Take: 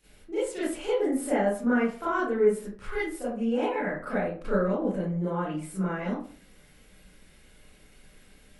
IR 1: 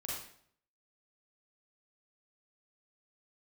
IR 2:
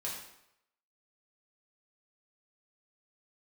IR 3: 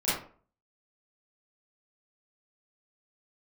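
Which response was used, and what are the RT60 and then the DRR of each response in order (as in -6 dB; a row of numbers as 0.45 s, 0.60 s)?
3; 0.60 s, 0.80 s, 0.45 s; -5.5 dB, -6.0 dB, -12.5 dB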